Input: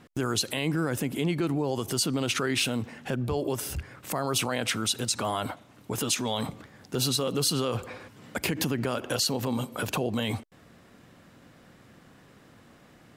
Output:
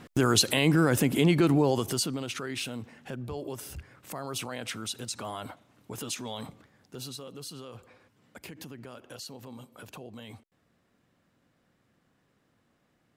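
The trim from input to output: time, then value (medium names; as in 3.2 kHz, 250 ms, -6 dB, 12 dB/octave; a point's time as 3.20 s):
1.65 s +5 dB
2.29 s -8 dB
6.34 s -8 dB
7.38 s -16 dB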